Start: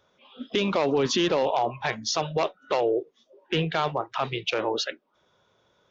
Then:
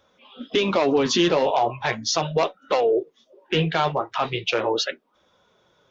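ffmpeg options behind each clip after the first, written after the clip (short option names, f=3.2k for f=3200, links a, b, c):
-af "flanger=delay=3.7:depth=8.5:regen=-37:speed=0.38:shape=sinusoidal,volume=7.5dB"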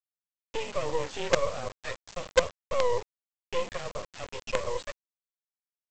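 -filter_complex "[0:a]afreqshift=36,asplit=3[a][b][c];[a]bandpass=f=530:t=q:w=8,volume=0dB[d];[b]bandpass=f=1.84k:t=q:w=8,volume=-6dB[e];[c]bandpass=f=2.48k:t=q:w=8,volume=-9dB[f];[d][e][f]amix=inputs=3:normalize=0,aresample=16000,acrusher=bits=4:dc=4:mix=0:aa=0.000001,aresample=44100,volume=2dB"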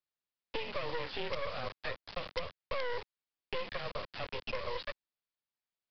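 -filter_complex "[0:a]aresample=11025,asoftclip=type=hard:threshold=-21dB,aresample=44100,acrossover=split=230|1200[a][b][c];[a]acompressor=threshold=-43dB:ratio=4[d];[b]acompressor=threshold=-43dB:ratio=4[e];[c]acompressor=threshold=-42dB:ratio=4[f];[d][e][f]amix=inputs=3:normalize=0,volume=2.5dB"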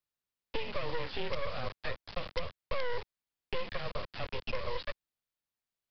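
-af "lowshelf=f=180:g=7"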